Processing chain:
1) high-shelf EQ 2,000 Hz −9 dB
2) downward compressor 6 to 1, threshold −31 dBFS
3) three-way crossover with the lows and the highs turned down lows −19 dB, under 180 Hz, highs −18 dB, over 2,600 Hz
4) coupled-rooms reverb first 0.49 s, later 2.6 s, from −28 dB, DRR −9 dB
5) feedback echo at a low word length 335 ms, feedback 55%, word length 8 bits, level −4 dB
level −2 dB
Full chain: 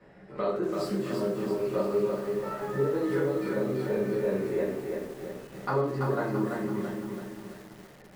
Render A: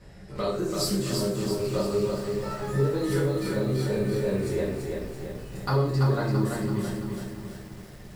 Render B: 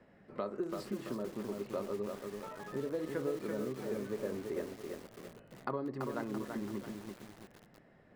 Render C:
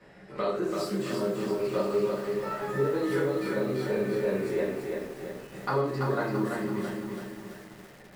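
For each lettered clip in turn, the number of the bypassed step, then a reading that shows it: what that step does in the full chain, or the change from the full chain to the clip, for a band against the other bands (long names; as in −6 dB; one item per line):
3, 4 kHz band +10.5 dB
4, change in crest factor +5.5 dB
1, 4 kHz band +4.5 dB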